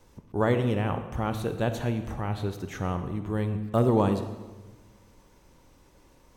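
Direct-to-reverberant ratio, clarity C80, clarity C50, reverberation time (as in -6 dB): 8.5 dB, 11.0 dB, 9.5 dB, 1.3 s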